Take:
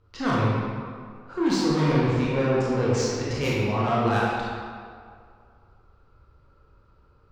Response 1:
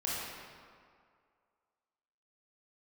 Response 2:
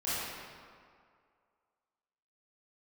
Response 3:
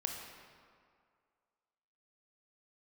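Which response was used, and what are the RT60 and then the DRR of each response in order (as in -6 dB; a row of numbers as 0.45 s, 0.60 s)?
1; 2.1 s, 2.1 s, 2.1 s; -7.0 dB, -13.0 dB, 1.5 dB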